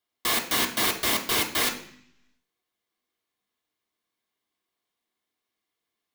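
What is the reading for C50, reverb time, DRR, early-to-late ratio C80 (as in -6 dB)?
10.0 dB, 0.60 s, 0.5 dB, 13.5 dB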